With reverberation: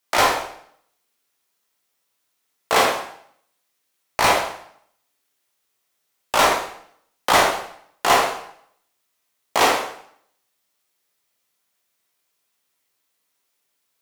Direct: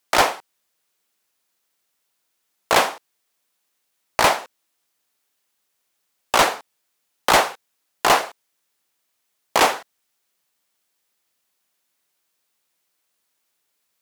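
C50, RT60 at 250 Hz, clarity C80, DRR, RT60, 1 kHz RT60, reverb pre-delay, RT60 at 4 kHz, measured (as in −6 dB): 4.5 dB, 0.70 s, 8.0 dB, −2.0 dB, 0.65 s, 0.65 s, 12 ms, 0.60 s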